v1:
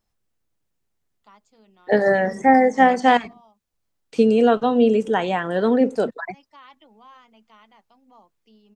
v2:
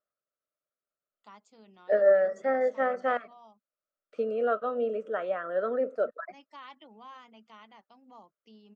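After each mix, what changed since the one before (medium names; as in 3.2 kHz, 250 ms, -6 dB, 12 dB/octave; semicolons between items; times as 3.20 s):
second voice: add two resonant band-passes 880 Hz, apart 1.1 oct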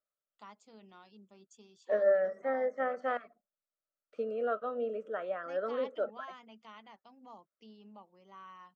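first voice: entry -0.85 s; second voice -5.5 dB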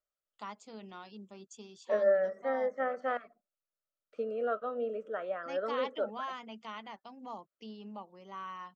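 first voice +8.5 dB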